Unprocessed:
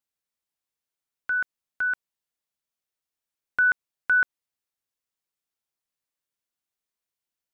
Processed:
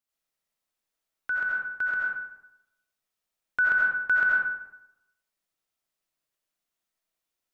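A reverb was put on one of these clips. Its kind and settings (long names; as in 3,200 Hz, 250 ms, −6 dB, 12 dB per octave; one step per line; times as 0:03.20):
comb and all-pass reverb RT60 0.89 s, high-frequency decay 0.55×, pre-delay 45 ms, DRR −6 dB
level −2.5 dB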